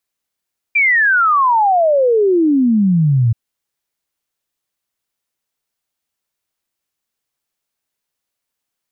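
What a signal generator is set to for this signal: log sweep 2.4 kHz -> 110 Hz 2.58 s -9.5 dBFS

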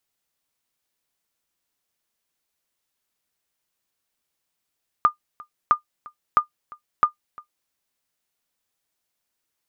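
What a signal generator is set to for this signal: sonar ping 1.21 kHz, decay 0.11 s, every 0.66 s, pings 4, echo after 0.35 s, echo -24 dB -6.5 dBFS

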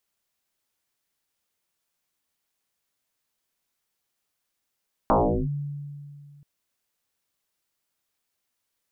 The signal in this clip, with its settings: FM tone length 1.33 s, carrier 144 Hz, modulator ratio 0.79, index 9.3, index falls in 0.38 s linear, decay 2.37 s, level -15 dB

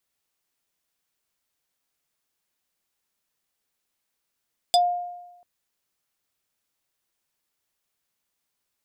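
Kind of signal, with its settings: FM tone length 0.69 s, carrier 708 Hz, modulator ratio 5.97, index 1.8, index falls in 0.10 s exponential, decay 1.03 s, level -13 dB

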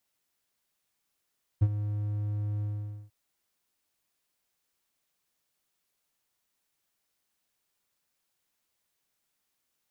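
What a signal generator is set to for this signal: ADSR triangle 104 Hz, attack 16 ms, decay 51 ms, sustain -12 dB, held 1.01 s, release 483 ms -14.5 dBFS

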